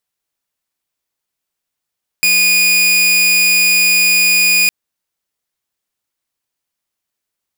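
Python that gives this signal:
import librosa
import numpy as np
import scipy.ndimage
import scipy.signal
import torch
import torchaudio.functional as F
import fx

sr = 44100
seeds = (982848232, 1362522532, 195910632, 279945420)

y = 10.0 ** (-6.5 / 20.0) * (2.0 * np.mod(2460.0 * (np.arange(round(2.46 * sr)) / sr), 1.0) - 1.0)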